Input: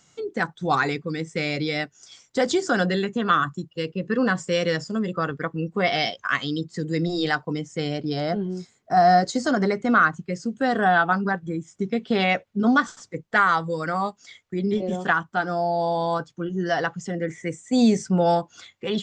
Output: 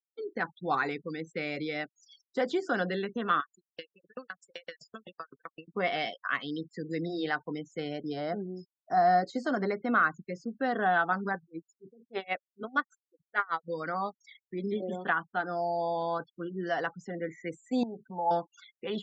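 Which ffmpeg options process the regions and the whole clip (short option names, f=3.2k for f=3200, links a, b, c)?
-filter_complex "[0:a]asettb=1/sr,asplit=3[a][b][c];[a]atrim=end=3.404[d];[b]atrim=start=3.4:end=5.68,asetpts=PTS-STARTPTS,afade=t=in:d=0.004:c=qsin,afade=t=out:st=2.276:d=0.004:c=qsin,tiltshelf=f=690:g=-8.5,acompressor=threshold=-22dB:ratio=16:attack=3.2:release=140:knee=1:detection=peak,aeval=exprs='val(0)*pow(10,-40*if(lt(mod(7.8*n/s,1),2*abs(7.8)/1000),1-mod(7.8*n/s,1)/(2*abs(7.8)/1000),(mod(7.8*n/s,1)-2*abs(7.8)/1000)/(1-2*abs(7.8)/1000))/20)':c=same[e];[c]atrim=start=5.676[f];[d][e]acrossfade=d=0.004:c1=hsin:c2=qsin[g];[g][f]acrossfade=d=0.004:c1=qsin:c2=hsin,asettb=1/sr,asplit=3[h][i][j];[h]atrim=end=11.424[k];[i]atrim=start=11.42:end=13.68,asetpts=PTS-STARTPTS,afade=t=in:d=0.004:c=qsin,afade=t=out:st=2.256:d=0.004:c=qsin,equalizer=f=200:t=o:w=0.31:g=-11,aeval=exprs='val(0)*pow(10,-27*(0.5-0.5*cos(2*PI*6.6*n/s))/20)':c=same[l];[j]atrim=start=13.676[m];[k][l]acrossfade=d=0.004:c1=hsin:c2=qsin[n];[n][m]acrossfade=d=0.004:c1=qsin:c2=hsin,asettb=1/sr,asplit=3[o][p][q];[o]atrim=end=17.834[r];[p]atrim=start=17.83:end=18.31,asetpts=PTS-STARTPTS,afade=t=in:d=0.004:c=qsin,afade=t=out:st=0.476:d=0.004:c=qsin,acompressor=threshold=-34dB:ratio=3:attack=3.2:release=140:knee=1:detection=peak,lowpass=f=870:t=q:w=9.8[s];[q]atrim=start=18.306[t];[r][s]acrossfade=d=0.004:c1=hsin:c2=qsin[u];[u][t]acrossfade=d=0.004:c1=qsin:c2=hsin,highpass=210,afftfilt=real='re*gte(hypot(re,im),0.01)':imag='im*gte(hypot(re,im),0.01)':win_size=1024:overlap=0.75,acrossover=split=3700[v][w];[w]acompressor=threshold=-51dB:ratio=4:attack=1:release=60[x];[v][x]amix=inputs=2:normalize=0,volume=-7dB"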